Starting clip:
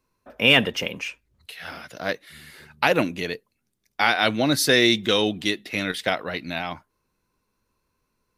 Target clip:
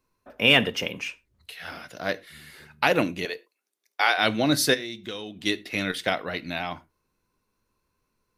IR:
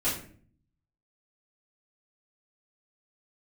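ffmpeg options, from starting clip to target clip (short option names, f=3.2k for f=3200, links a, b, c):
-filter_complex "[0:a]asettb=1/sr,asplit=3[a][b][c];[a]atrim=end=3.254[d];[b]atrim=start=3.25:end=4.18,asetpts=PTS-STARTPTS,afade=t=in:d=0.004:c=qsin,afade=t=out:st=0.926:d=0.004:c=qsin,highpass=f=380:w=0.5412,highpass=f=380:w=1.3066[e];[c]atrim=start=4.176[f];[d][e]acrossfade=d=0.004:c1=hsin:c2=qsin[g];[g][f]acrossfade=d=0.004:c1=qsin:c2=hsin,asplit=3[h][i][j];[h]afade=t=out:st=4.73:d=0.02[k];[i]acompressor=threshold=-31dB:ratio=6,afade=t=in:st=4.73:d=0.02,afade=t=out:st=5.45:d=0.02[l];[j]afade=t=in:st=5.45:d=0.02[m];[k][l][m]amix=inputs=3:normalize=0,asplit=2[n][o];[1:a]atrim=start_sample=2205,afade=t=out:st=0.17:d=0.01,atrim=end_sample=7938[p];[o][p]afir=irnorm=-1:irlink=0,volume=-24dB[q];[n][q]amix=inputs=2:normalize=0,volume=-2dB"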